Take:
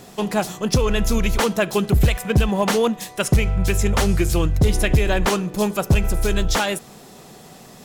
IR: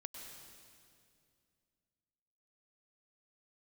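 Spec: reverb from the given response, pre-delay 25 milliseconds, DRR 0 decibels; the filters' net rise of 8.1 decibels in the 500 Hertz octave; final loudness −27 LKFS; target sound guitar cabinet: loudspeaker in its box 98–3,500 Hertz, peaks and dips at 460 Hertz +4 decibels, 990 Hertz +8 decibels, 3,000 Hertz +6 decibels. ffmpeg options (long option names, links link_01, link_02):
-filter_complex "[0:a]equalizer=frequency=500:width_type=o:gain=6.5,asplit=2[link_01][link_02];[1:a]atrim=start_sample=2205,adelay=25[link_03];[link_02][link_03]afir=irnorm=-1:irlink=0,volume=3.5dB[link_04];[link_01][link_04]amix=inputs=2:normalize=0,highpass=98,equalizer=frequency=460:width_type=q:width=4:gain=4,equalizer=frequency=990:width_type=q:width=4:gain=8,equalizer=frequency=3000:width_type=q:width=4:gain=6,lowpass=frequency=3500:width=0.5412,lowpass=frequency=3500:width=1.3066,volume=-12.5dB"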